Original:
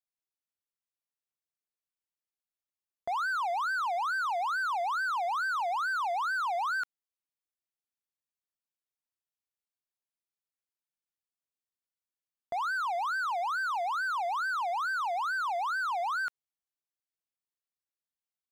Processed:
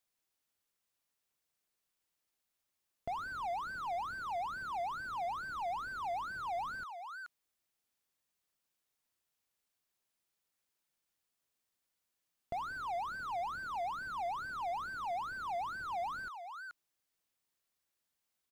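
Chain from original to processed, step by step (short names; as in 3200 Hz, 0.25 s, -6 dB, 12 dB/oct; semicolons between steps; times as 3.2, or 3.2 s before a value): echo 0.428 s -24 dB; slew limiter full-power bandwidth 4.3 Hz; gain +9 dB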